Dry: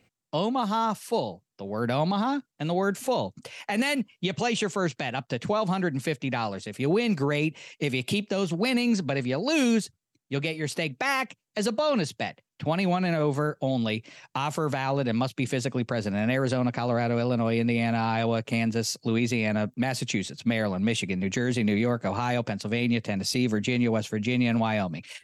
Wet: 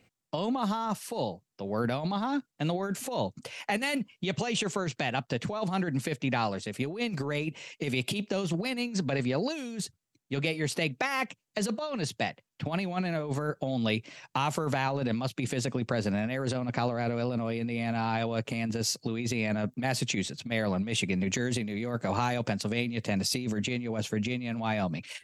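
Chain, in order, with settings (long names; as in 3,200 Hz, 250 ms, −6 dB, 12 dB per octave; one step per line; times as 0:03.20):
0:21.13–0:23.38: high-shelf EQ 6,300 Hz +5.5 dB
compressor whose output falls as the input rises −27 dBFS, ratio −0.5
level −2 dB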